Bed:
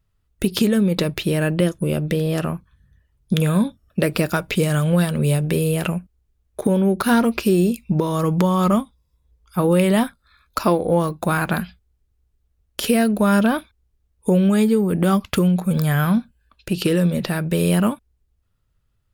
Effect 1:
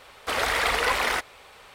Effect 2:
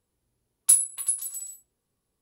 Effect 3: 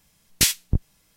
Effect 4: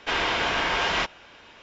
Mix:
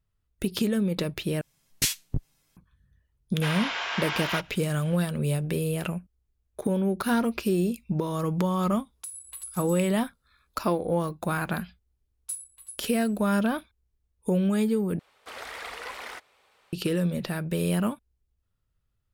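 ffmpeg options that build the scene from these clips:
-filter_complex "[2:a]asplit=2[a][b];[0:a]volume=-8dB[c];[3:a]aecho=1:1:7.4:0.52[d];[4:a]highpass=790[e];[a]acompressor=threshold=-29dB:ratio=10:attack=0.84:release=235:knee=6:detection=peak[f];[1:a]lowshelf=f=110:g=-9[g];[c]asplit=3[h][i][j];[h]atrim=end=1.414[k];[d]atrim=end=1.16,asetpts=PTS-STARTPTS,volume=-7.5dB[l];[i]atrim=start=2.566:end=14.994[m];[g]atrim=end=1.74,asetpts=PTS-STARTPTS,volume=-14.5dB[n];[j]atrim=start=16.726[o];[e]atrim=end=1.62,asetpts=PTS-STARTPTS,volume=-5dB,afade=t=in:d=0.004:c=hsin,afade=t=out:st=1.616:d=0.004:c=hsin,adelay=3350[p];[f]atrim=end=2.21,asetpts=PTS-STARTPTS,volume=-3.5dB,afade=t=in:d=0.004:c=hsin,afade=t=out:st=2.206:d=0.004:c=hsin,adelay=8350[q];[b]atrim=end=2.21,asetpts=PTS-STARTPTS,volume=-17dB,afade=t=in:d=0.004:c=hsin,afade=t=out:st=2.206:d=0.004:c=hsin,adelay=11600[r];[k][l]acrossfade=d=0.004:c1=hsin:c2=hsin[s];[s][m]acrossfade=d=0.004:c1=hsin:c2=hsin[t];[t][n]acrossfade=d=0.004:c1=hsin:c2=hsin[u];[u][o]acrossfade=d=0.004:c1=hsin:c2=hsin[v];[v][p][q][r]amix=inputs=4:normalize=0"

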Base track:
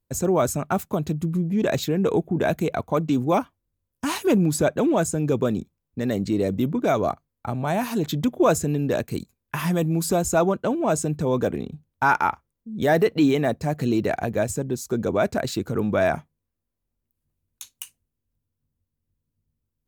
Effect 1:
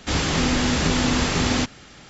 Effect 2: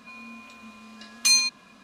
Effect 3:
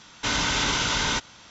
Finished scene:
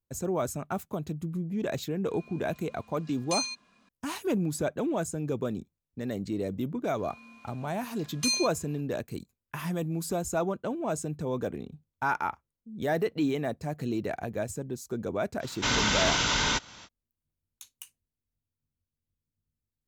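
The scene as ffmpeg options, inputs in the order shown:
-filter_complex "[2:a]asplit=2[a][b];[0:a]volume=-9dB[c];[a]aresample=22050,aresample=44100[d];[3:a]acompressor=mode=upward:threshold=-41dB:ratio=2.5:attack=3.2:release=140:knee=2.83:detection=peak[e];[d]atrim=end=1.83,asetpts=PTS-STARTPTS,volume=-12dB,afade=t=in:d=0.004:c=hsin,afade=t=out:st=1.826:d=0.004:c=hsin,adelay=2060[f];[b]atrim=end=1.83,asetpts=PTS-STARTPTS,volume=-9dB,afade=t=in:d=0.004:c=hsin,afade=t=out:st=1.826:d=0.004:c=hsin,adelay=307818S[g];[e]atrim=end=1.5,asetpts=PTS-STARTPTS,volume=-1.5dB,afade=t=in:d=0.05,afade=t=out:st=1.45:d=0.05,adelay=15390[h];[c][f][g][h]amix=inputs=4:normalize=0"

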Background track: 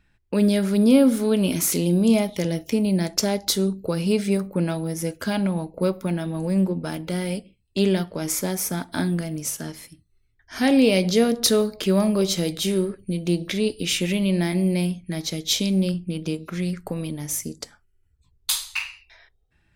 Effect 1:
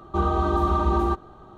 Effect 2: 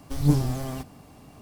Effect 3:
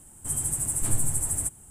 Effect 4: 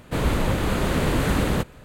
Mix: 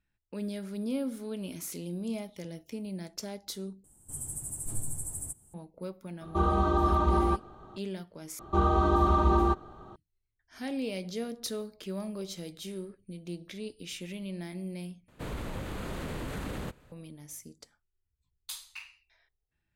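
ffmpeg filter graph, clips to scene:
-filter_complex "[1:a]asplit=2[a][b];[0:a]volume=-17dB[c];[3:a]equalizer=f=2.1k:w=0.59:g=-10[d];[4:a]acompressor=threshold=-29dB:ratio=2:attack=45:release=22:knee=1:detection=peak[e];[c]asplit=4[f][g][h][i];[f]atrim=end=3.844[j];[d]atrim=end=1.7,asetpts=PTS-STARTPTS,volume=-9dB[k];[g]atrim=start=5.536:end=8.394[l];[b]atrim=end=1.57,asetpts=PTS-STARTPTS,volume=-2dB[m];[h]atrim=start=9.956:end=15.084[n];[e]atrim=end=1.84,asetpts=PTS-STARTPTS,volume=-13dB[o];[i]atrim=start=16.916[p];[a]atrim=end=1.57,asetpts=PTS-STARTPTS,volume=-3.5dB,afade=t=in:d=0.004:c=hsin,afade=t=out:st=1.566:d=0.004:c=hsin,adelay=6210[q];[j][k]acrossfade=d=0.004:c1=hsin:c2=hsin[r];[r][l]acrossfade=d=0.004:c1=hsin:c2=hsin[s];[s][m]acrossfade=d=0.004:c1=hsin:c2=hsin[t];[t][n]acrossfade=d=0.004:c1=hsin:c2=hsin[u];[u][o]acrossfade=d=0.004:c1=hsin:c2=hsin[v];[v][p]acrossfade=d=0.004:c1=hsin:c2=hsin[w];[w][q]amix=inputs=2:normalize=0"

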